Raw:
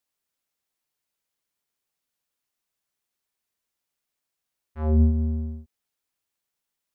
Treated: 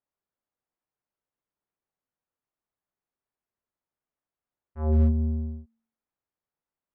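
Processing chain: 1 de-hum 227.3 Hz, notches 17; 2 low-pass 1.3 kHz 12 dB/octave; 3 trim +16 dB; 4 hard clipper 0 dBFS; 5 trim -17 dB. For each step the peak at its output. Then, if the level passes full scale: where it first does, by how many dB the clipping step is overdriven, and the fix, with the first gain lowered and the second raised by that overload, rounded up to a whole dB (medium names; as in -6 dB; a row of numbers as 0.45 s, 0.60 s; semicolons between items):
-12.0 dBFS, -12.0 dBFS, +4.0 dBFS, 0.0 dBFS, -17.0 dBFS; step 3, 4.0 dB; step 3 +12 dB, step 5 -13 dB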